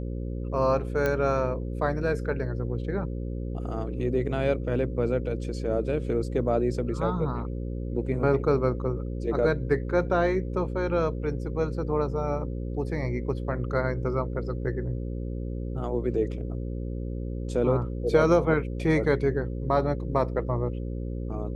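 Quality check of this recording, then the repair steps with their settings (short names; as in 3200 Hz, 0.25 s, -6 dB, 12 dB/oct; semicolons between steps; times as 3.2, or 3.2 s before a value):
buzz 60 Hz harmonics 9 -32 dBFS
1.06 pop -14 dBFS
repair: de-click; de-hum 60 Hz, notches 9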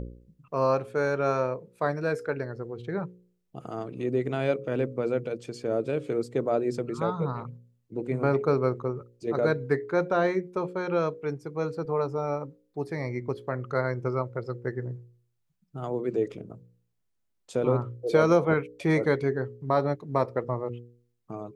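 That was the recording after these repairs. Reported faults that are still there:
none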